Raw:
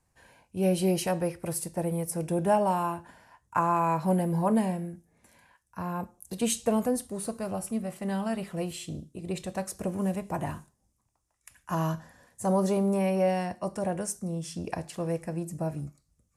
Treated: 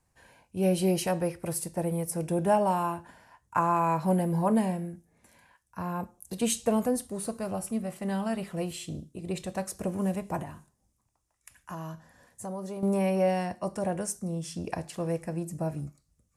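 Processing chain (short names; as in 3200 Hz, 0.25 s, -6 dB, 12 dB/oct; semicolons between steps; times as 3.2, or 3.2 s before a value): 10.42–12.83 compressor 2:1, threshold -44 dBFS, peak gain reduction 12.5 dB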